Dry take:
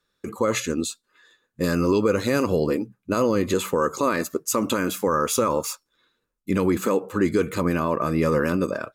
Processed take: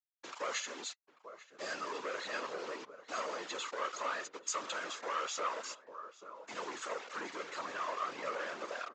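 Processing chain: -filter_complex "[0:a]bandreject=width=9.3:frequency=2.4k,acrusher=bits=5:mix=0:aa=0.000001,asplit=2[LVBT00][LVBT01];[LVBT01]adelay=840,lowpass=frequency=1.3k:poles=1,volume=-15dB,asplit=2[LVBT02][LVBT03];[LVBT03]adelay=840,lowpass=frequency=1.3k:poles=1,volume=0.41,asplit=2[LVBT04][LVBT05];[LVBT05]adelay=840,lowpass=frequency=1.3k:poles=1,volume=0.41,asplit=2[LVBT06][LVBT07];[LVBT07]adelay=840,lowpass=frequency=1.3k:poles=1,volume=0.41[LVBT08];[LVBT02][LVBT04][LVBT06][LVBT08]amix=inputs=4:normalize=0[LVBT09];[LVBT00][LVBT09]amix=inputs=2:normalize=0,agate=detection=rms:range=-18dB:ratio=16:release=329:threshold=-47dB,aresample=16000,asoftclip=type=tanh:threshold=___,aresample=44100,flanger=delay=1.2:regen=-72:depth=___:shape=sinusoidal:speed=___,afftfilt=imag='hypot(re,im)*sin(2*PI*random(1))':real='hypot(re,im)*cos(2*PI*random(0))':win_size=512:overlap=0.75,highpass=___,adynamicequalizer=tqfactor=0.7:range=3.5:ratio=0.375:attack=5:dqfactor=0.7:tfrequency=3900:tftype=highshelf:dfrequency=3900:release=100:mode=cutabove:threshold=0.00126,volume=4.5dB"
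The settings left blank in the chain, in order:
-20dB, 1.8, 1.7, 860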